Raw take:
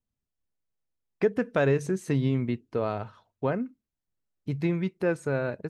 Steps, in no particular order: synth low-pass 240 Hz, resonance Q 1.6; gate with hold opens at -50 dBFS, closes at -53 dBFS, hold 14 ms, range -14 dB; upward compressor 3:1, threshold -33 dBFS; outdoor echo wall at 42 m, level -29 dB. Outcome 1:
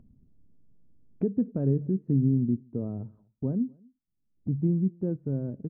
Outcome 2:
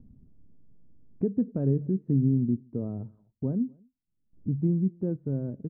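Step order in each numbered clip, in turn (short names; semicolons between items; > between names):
gate with hold > synth low-pass > upward compressor > outdoor echo; upward compressor > outdoor echo > gate with hold > synth low-pass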